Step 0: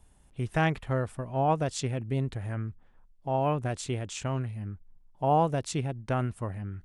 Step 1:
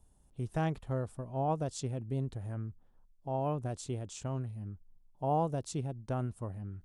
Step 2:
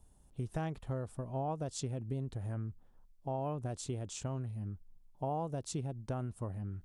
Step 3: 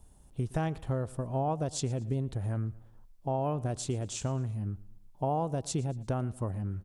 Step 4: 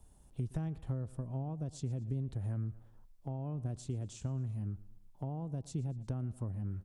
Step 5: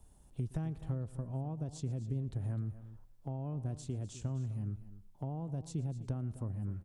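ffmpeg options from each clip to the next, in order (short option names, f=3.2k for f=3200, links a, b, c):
-af "equalizer=f=2.1k:w=0.96:g=-11,volume=-5dB"
-af "acompressor=threshold=-36dB:ratio=4,volume=2dB"
-af "aecho=1:1:115|230|345:0.0891|0.0392|0.0173,volume=6dB"
-filter_complex "[0:a]acrossover=split=280[a][b];[b]acompressor=threshold=-49dB:ratio=3[c];[a][c]amix=inputs=2:normalize=0,volume=-3.5dB"
-af "aecho=1:1:255:0.178"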